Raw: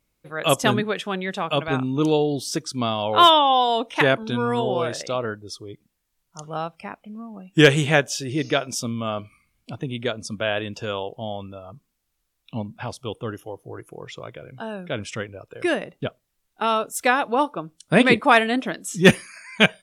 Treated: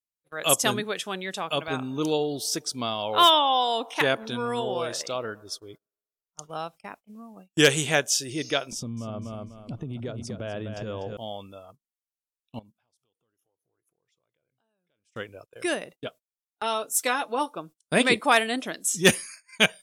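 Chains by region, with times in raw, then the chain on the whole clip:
0:01.40–0:06.50: parametric band 8,000 Hz −4.5 dB 1.2 octaves + delay with a band-pass on its return 115 ms, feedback 60%, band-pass 790 Hz, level −23 dB
0:08.72–0:11.17: spectral tilt −4.5 dB per octave + repeating echo 247 ms, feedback 30%, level −9 dB + downward compressor 5 to 1, threshold −22 dBFS
0:12.59–0:15.15: downward compressor 5 to 1, threshold −44 dBFS + one half of a high-frequency compander encoder only
0:15.93–0:17.55: parametric band 65 Hz −9 dB 1.7 octaves + notch comb filter 190 Hz
whole clip: noise gate −39 dBFS, range −26 dB; bass and treble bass −5 dB, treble +12 dB; level −5 dB

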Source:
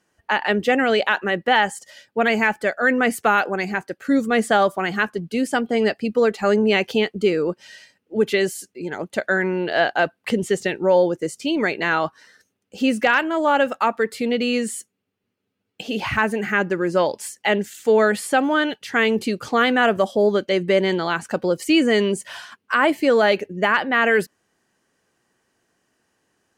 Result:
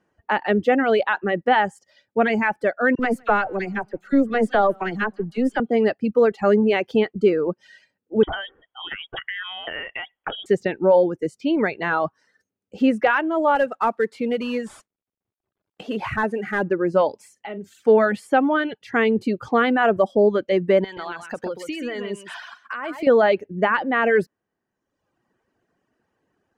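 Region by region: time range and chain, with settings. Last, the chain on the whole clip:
0:02.95–0:05.60: gain on one half-wave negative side −3 dB + all-pass dispersion lows, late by 40 ms, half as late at 1,600 Hz + feedback echo with a swinging delay time 162 ms, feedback 35%, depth 101 cents, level −20.5 dB
0:08.23–0:10.46: parametric band 2,300 Hz +9.5 dB 3 octaves + downward compressor 16 to 1, threshold −21 dBFS + voice inversion scrambler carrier 3,500 Hz
0:13.55–0:16.63: variable-slope delta modulation 64 kbit/s + low-shelf EQ 320 Hz −5 dB
0:17.16–0:17.81: notch filter 1,700 Hz, Q 9.7 + downward compressor 4 to 1, threshold −31 dBFS + double-tracking delay 41 ms −9 dB
0:20.84–0:23.07: tilt shelving filter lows −6.5 dB, about 760 Hz + downward compressor, threshold −25 dBFS + single-tap delay 130 ms −4.5 dB
whole clip: high-shelf EQ 2,000 Hz −10.5 dB; reverb reduction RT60 1 s; high-shelf EQ 5,600 Hz −11 dB; level +2.5 dB

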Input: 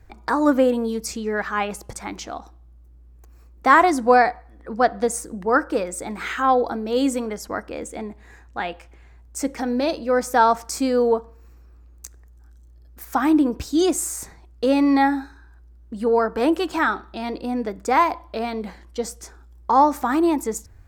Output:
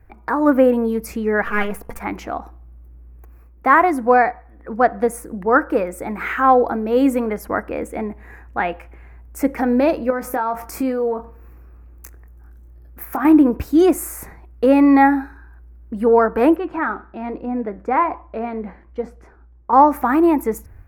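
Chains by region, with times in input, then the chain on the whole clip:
0:01.44–0:02.01: gain on one half-wave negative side −12 dB + comb filter 4.3 ms, depth 63%
0:10.10–0:13.25: downward compressor 10 to 1, threshold −24 dBFS + double-tracking delay 23 ms −9.5 dB
0:16.56–0:19.73: flanger 1.2 Hz, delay 5.8 ms, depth 4.5 ms, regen −84% + head-to-tape spacing loss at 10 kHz 21 dB
whole clip: flat-topped bell 5,200 Hz −15 dB; automatic gain control gain up to 6.5 dB

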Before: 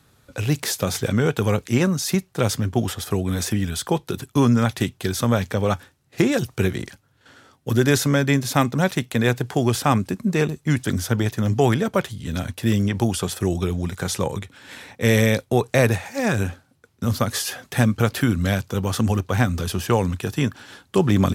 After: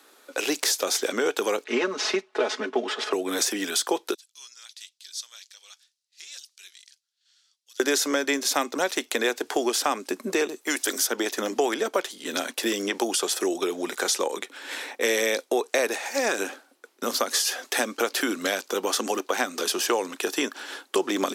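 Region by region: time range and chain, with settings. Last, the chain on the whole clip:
0:01.64–0:03.13: variable-slope delta modulation 64 kbit/s + band-pass filter 240–3,000 Hz + comb filter 4.7 ms, depth 93%
0:04.14–0:07.80: four-pole ladder band-pass 5,600 Hz, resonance 35% + transient designer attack −5 dB, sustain −1 dB
0:10.61–0:11.07: high-pass filter 350 Hz + high-shelf EQ 9,700 Hz +12 dB
whole clip: Butterworth high-pass 300 Hz 36 dB per octave; dynamic equaliser 5,700 Hz, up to +6 dB, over −44 dBFS, Q 1; downward compressor 3 to 1, threshold −29 dBFS; level +5.5 dB

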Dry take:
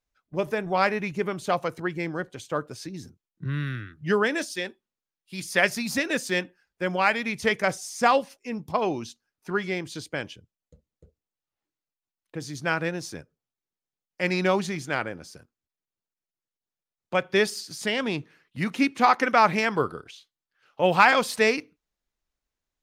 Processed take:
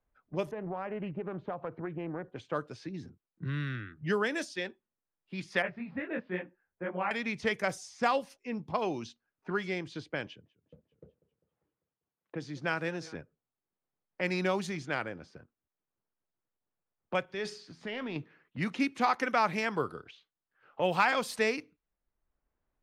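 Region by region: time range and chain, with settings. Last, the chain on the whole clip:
0:00.51–0:02.36: low-pass filter 1,100 Hz + downward compressor 5 to 1, threshold −29 dBFS + highs frequency-modulated by the lows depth 0.22 ms
0:05.62–0:07.11: Bessel low-pass filter 1,600 Hz, order 6 + micro pitch shift up and down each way 54 cents
0:10.26–0:13.15: high-pass filter 120 Hz + feedback echo with a swinging delay time 198 ms, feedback 54%, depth 151 cents, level −21.5 dB
0:17.25–0:18.16: downward compressor 1.5 to 1, threshold −30 dBFS + transient designer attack −2 dB, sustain +6 dB + tuned comb filter 84 Hz, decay 0.42 s, mix 50%
whole clip: low-pass that shuts in the quiet parts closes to 1,400 Hz, open at −21.5 dBFS; multiband upward and downward compressor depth 40%; level −6 dB

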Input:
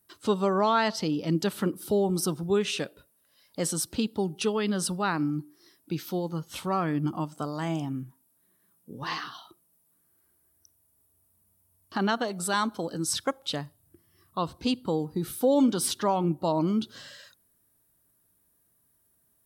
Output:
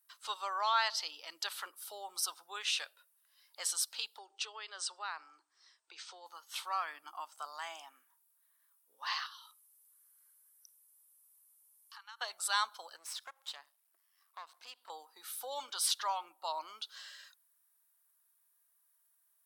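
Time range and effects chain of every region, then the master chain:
0:04.18–0:06.26: Butterworth low-pass 8,800 Hz 72 dB per octave + low shelf with overshoot 290 Hz −9.5 dB, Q 3 + downward compressor 2 to 1, threshold −33 dBFS
0:09.26–0:12.21: high-shelf EQ 5,600 Hz +11.5 dB + downward compressor 3 to 1, threshold −46 dBFS + linear-phase brick-wall band-pass 820–14,000 Hz
0:12.96–0:14.90: gain on one half-wave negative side −12 dB + downward compressor 2 to 1, threshold −40 dBFS + low-shelf EQ 230 Hz +11.5 dB
whole clip: high-pass filter 880 Hz 24 dB per octave; dynamic equaliser 4,200 Hz, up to +5 dB, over −46 dBFS, Q 1.3; level −4.5 dB

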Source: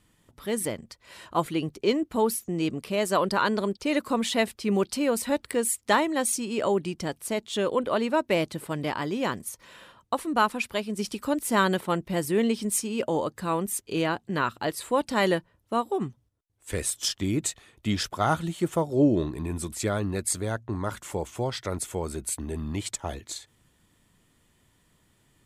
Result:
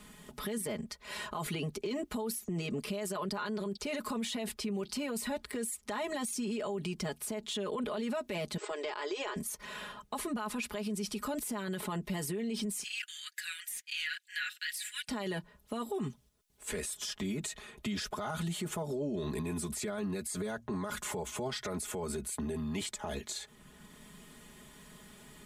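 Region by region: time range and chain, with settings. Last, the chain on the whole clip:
0:08.57–0:09.36: linear-phase brick-wall band-pass 300–8,200 Hz + downward compressor, threshold −31 dBFS
0:12.83–0:15.08: Butterworth high-pass 1,600 Hz 72 dB per octave + de-essing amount 65% + phase shifter 1.6 Hz, delay 4.5 ms, feedback 30%
whole clip: comb filter 4.8 ms, depth 94%; brickwall limiter −28.5 dBFS; multiband upward and downward compressor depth 40%

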